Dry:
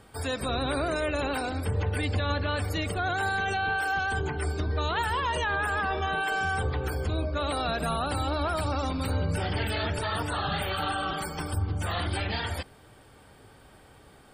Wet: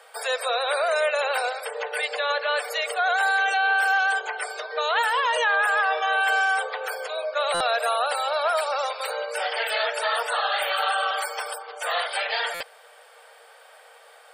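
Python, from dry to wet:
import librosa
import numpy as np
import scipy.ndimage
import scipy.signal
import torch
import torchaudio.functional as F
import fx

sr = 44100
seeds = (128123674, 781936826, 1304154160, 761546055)

y = scipy.signal.sosfilt(scipy.signal.cheby1(6, 3, 460.0, 'highpass', fs=sr, output='sos'), x)
y = fx.buffer_glitch(y, sr, at_s=(7.54, 12.54), block=256, repeats=10)
y = y * 10.0 ** (8.0 / 20.0)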